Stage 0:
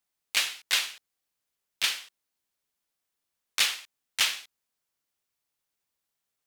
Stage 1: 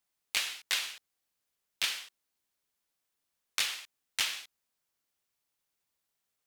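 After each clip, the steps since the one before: compression 6:1, threshold -27 dBFS, peak gain reduction 8.5 dB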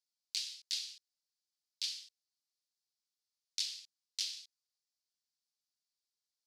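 ladder band-pass 5.3 kHz, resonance 55%; trim +4 dB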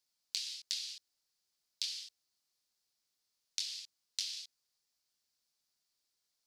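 compression 6:1, threshold -42 dBFS, peak gain reduction 11 dB; trim +7.5 dB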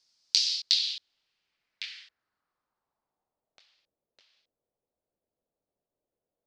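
low-pass sweep 5.3 kHz -> 550 Hz, 0.40–3.82 s; trim +8 dB

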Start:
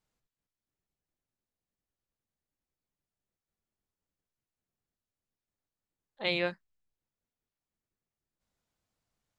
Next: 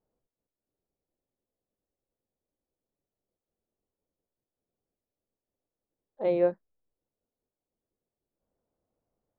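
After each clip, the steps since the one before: FFT filter 160 Hz 0 dB, 250 Hz +5 dB, 520 Hz +10 dB, 3.3 kHz -22 dB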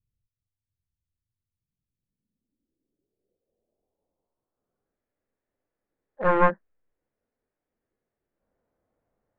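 one-sided wavefolder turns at -28 dBFS; low-pass sweep 100 Hz -> 1.8 kHz, 1.37–5.08 s; harmonic-percussive split harmonic +7 dB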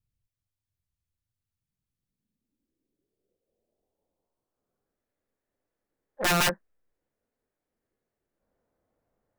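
integer overflow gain 17.5 dB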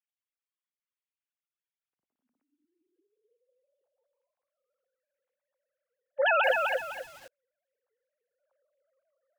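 formants replaced by sine waves; bit-crushed delay 253 ms, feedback 35%, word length 8-bit, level -3.5 dB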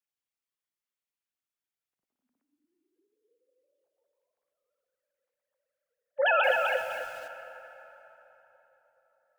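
plate-style reverb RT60 3.8 s, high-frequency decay 0.65×, pre-delay 0 ms, DRR 8 dB

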